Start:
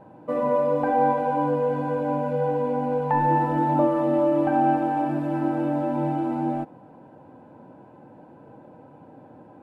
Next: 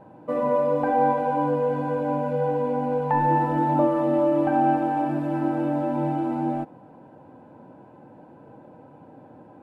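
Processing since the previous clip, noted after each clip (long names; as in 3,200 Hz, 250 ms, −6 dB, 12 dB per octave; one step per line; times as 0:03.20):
no processing that can be heard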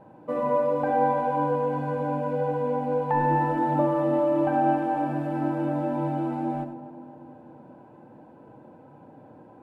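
tape delay 249 ms, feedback 76%, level −13.5 dB, low-pass 1,200 Hz
reverb whose tail is shaped and stops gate 120 ms rising, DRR 9 dB
level −2.5 dB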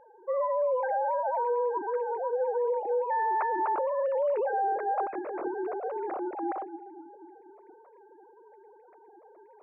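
three sine waves on the formant tracks
brickwall limiter −22 dBFS, peak gain reduction 11.5 dB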